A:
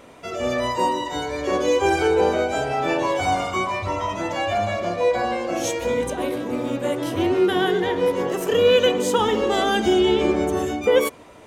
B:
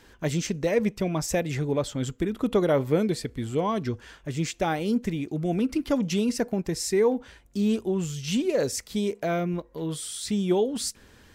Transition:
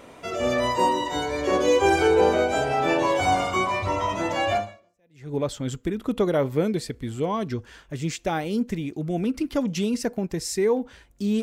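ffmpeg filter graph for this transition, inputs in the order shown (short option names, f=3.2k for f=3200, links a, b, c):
-filter_complex "[0:a]apad=whole_dur=11.42,atrim=end=11.42,atrim=end=5.34,asetpts=PTS-STARTPTS[a];[1:a]atrim=start=0.91:end=7.77,asetpts=PTS-STARTPTS[b];[a][b]acrossfade=d=0.78:c1=exp:c2=exp"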